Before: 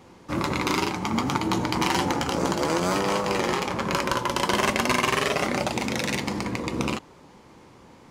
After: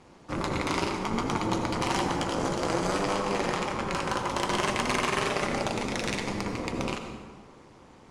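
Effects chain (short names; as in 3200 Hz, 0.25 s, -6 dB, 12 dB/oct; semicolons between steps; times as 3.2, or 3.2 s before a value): steep low-pass 11000 Hz 48 dB/oct; soft clip -13.5 dBFS, distortion -19 dB; AM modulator 210 Hz, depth 75%; on a send: reverb RT60 1.6 s, pre-delay 68 ms, DRR 6 dB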